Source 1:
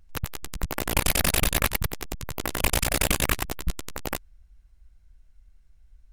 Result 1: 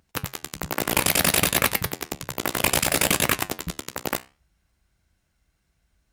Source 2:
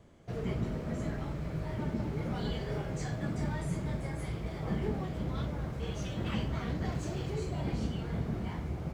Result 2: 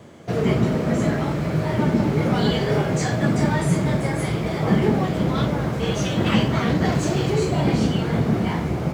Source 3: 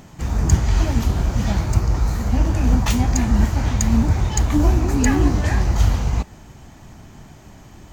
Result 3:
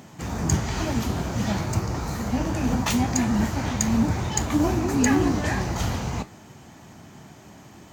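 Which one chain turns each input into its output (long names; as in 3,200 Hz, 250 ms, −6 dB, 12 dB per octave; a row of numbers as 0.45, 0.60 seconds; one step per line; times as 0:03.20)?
flanger 0.61 Hz, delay 7.9 ms, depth 9.3 ms, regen −73%
high-pass filter 130 Hz 12 dB per octave
normalise the peak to −6 dBFS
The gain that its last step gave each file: +8.5, +20.5, +3.5 decibels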